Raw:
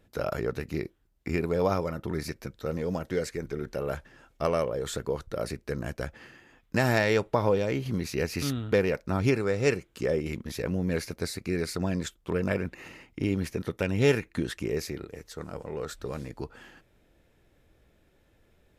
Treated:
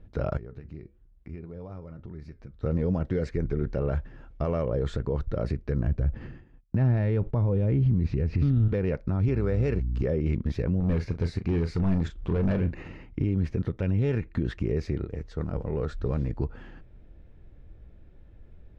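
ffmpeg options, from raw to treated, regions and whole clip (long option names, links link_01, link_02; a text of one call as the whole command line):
ffmpeg -i in.wav -filter_complex "[0:a]asettb=1/sr,asplit=3[link_01][link_02][link_03];[link_01]atrim=end=0.374[link_04];[link_02]atrim=start=0.37:end=2.63,asetpts=PTS-STARTPTS,afade=type=in:duration=0.004:curve=qsin,afade=type=out:start_time=2.256:duration=0.004:curve=qsin,flanger=delay=5.2:depth=2.2:regen=-80:speed=1.1:shape=sinusoidal,acompressor=threshold=-57dB:ratio=2:attack=3.2:release=140:knee=1:detection=peak[link_05];[link_03]atrim=start=2.626[link_06];[link_04][link_05]acrossfade=duration=0.004:curve1=hsin:curve2=qsin[link_07];[link_07][link_06]acrossfade=duration=0.004:curve1=qsin:curve2=hsin,asettb=1/sr,asplit=3[link_08][link_09][link_10];[link_08]atrim=end=5.874[link_11];[link_09]atrim=start=5.87:end=8.68,asetpts=PTS-STARTPTS,afade=type=in:duration=0.004:curve=qsin,afade=type=out:start_time=2.806:duration=0.004:curve=qsin,agate=range=-33dB:threshold=-49dB:ratio=3:release=100:detection=peak,acrossover=split=4600[link_12][link_13];[link_13]acompressor=threshold=-55dB:ratio=4:attack=1:release=60[link_14];[link_12][link_14]amix=inputs=2:normalize=0,lowshelf=frequency=340:gain=10.5[link_15];[link_10]atrim=start=8.676[link_16];[link_11][link_15]acrossfade=duration=0.004:curve1=hsin:curve2=qsin[link_17];[link_17][link_16]acrossfade=duration=0.004:curve1=qsin:curve2=hsin,asettb=1/sr,asplit=3[link_18][link_19][link_20];[link_18]atrim=end=9.284[link_21];[link_19]atrim=start=9.28:end=10.02,asetpts=PTS-STARTPTS,afade=type=in:duration=0.004:curve=qsin,afade=type=out:start_time=0.736:duration=0.004:curve=qsin,highpass=60,aeval=exprs='sgn(val(0))*max(abs(val(0))-0.00251,0)':channel_layout=same,aeval=exprs='val(0)+0.00891*(sin(2*PI*60*n/s)+sin(2*PI*2*60*n/s)/2+sin(2*PI*3*60*n/s)/3+sin(2*PI*4*60*n/s)/4+sin(2*PI*5*60*n/s)/5)':channel_layout=same[link_22];[link_20]atrim=start=10.016[link_23];[link_21][link_22]acrossfade=duration=0.004:curve1=hsin:curve2=qsin[link_24];[link_24][link_23]acrossfade=duration=0.004:curve1=qsin:curve2=hsin,asettb=1/sr,asplit=3[link_25][link_26][link_27];[link_25]atrim=end=10.804[link_28];[link_26]atrim=start=10.8:end=12.83,asetpts=PTS-STARTPTS,afade=type=in:duration=0.004:curve=qsin,afade=type=out:start_time=2.026:duration=0.004:curve=qsin,acompressor=mode=upward:threshold=-37dB:ratio=2.5:attack=3.2:release=140:knee=2.83:detection=peak,asoftclip=type=hard:threshold=-27.5dB,asplit=2[link_29][link_30];[link_30]adelay=36,volume=-10dB[link_31];[link_29][link_31]amix=inputs=2:normalize=0,atrim=end_sample=89523[link_32];[link_27]atrim=start=12.826[link_33];[link_28][link_32]acrossfade=duration=0.004:curve1=hsin:curve2=qsin[link_34];[link_34][link_33]acrossfade=duration=0.004:curve1=qsin:curve2=hsin,lowpass=6000,aemphasis=mode=reproduction:type=riaa,alimiter=limit=-16.5dB:level=0:latency=1:release=95" out.wav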